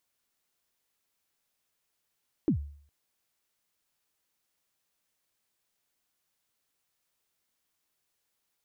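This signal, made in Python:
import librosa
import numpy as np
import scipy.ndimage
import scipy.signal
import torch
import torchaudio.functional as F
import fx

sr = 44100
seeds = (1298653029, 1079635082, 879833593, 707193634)

y = fx.drum_kick(sr, seeds[0], length_s=0.41, level_db=-19, start_hz=360.0, end_hz=72.0, sweep_ms=96.0, decay_s=0.54, click=False)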